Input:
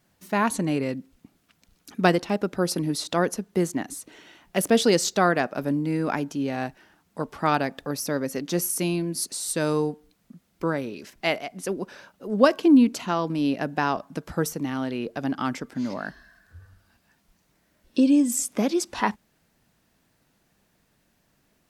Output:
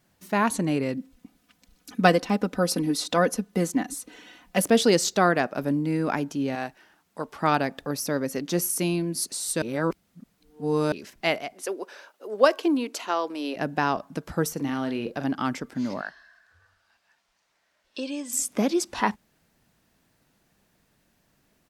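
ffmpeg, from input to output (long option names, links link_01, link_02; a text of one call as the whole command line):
ffmpeg -i in.wav -filter_complex "[0:a]asettb=1/sr,asplit=3[link_01][link_02][link_03];[link_01]atrim=end=0.974[link_04];[link_02]atrim=start=0.97:end=4.64,asetpts=PTS-STARTPTS,afade=type=in:duration=0.004:curve=qsin,afade=type=out:start_time=3.666:duration=0.004:curve=qsin,aecho=1:1:4:0.65,atrim=end_sample=161847[link_05];[link_03]atrim=start=4.636[link_06];[link_04][link_05]acrossfade=duration=0.004:curve1=hsin:curve2=qsin[link_07];[link_07][link_06]acrossfade=duration=0.004:curve1=qsin:curve2=hsin,asettb=1/sr,asplit=3[link_08][link_09][link_10];[link_08]atrim=end=6.554[link_11];[link_09]atrim=start=6.55:end=7.41,asetpts=PTS-STARTPTS,afade=type=in:duration=0.004:curve=qsin,afade=type=out:start_time=0.856:duration=0.004:curve=qsin,lowshelf=frequency=280:gain=-9.5[link_12];[link_10]atrim=start=7.406[link_13];[link_11][link_12]acrossfade=duration=0.004:curve1=hsin:curve2=qsin[link_14];[link_14][link_13]acrossfade=duration=0.004:curve1=qsin:curve2=hsin,asettb=1/sr,asplit=3[link_15][link_16][link_17];[link_15]atrim=end=11.534[link_18];[link_16]atrim=start=11.53:end=13.56,asetpts=PTS-STARTPTS,afade=type=in:duration=0.004:curve=qsin,afade=type=out:start_time=2.026:duration=0.004:curve=qsin,highpass=frequency=360:width=0.5412,highpass=frequency=360:width=1.3066[link_19];[link_17]atrim=start=13.556[link_20];[link_18][link_19]acrossfade=duration=0.004:curve1=hsin:curve2=qsin[link_21];[link_21][link_20]acrossfade=duration=0.004:curve1=qsin:curve2=hsin,asplit=3[link_22][link_23][link_24];[link_22]afade=type=out:start_time=14.56:duration=0.02[link_25];[link_23]asplit=2[link_26][link_27];[link_27]adelay=43,volume=-9dB[link_28];[link_26][link_28]amix=inputs=2:normalize=0,afade=type=in:start_time=14.56:duration=0.02,afade=type=out:start_time=15.23:duration=0.02[link_29];[link_24]afade=type=in:start_time=15.23:duration=0.02[link_30];[link_25][link_29][link_30]amix=inputs=3:normalize=0,asettb=1/sr,asplit=3[link_31][link_32][link_33];[link_31]atrim=end=16.014[link_34];[link_32]atrim=start=16.01:end=18.33,asetpts=PTS-STARTPTS,afade=type=in:duration=0.004:curve=qsin,afade=type=out:start_time=2.316:duration=0.004:curve=qsin,acrossover=split=550 7300:gain=0.112 1 0.224[link_35][link_36][link_37];[link_35][link_36][link_37]amix=inputs=3:normalize=0[link_38];[link_33]atrim=start=18.326[link_39];[link_34][link_38]acrossfade=duration=0.004:curve1=hsin:curve2=qsin[link_40];[link_40][link_39]acrossfade=duration=0.004:curve1=qsin:curve2=hsin,asplit=3[link_41][link_42][link_43];[link_41]atrim=end=9.622[link_44];[link_42]atrim=start=9.618:end=10.922,asetpts=PTS-STARTPTS,areverse[link_45];[link_43]atrim=start=10.918[link_46];[link_44][link_45]acrossfade=duration=0.004:curve1=hsin:curve2=hsin[link_47];[link_47][link_46]acrossfade=duration=0.004:curve1=hsin:curve2=hsin" out.wav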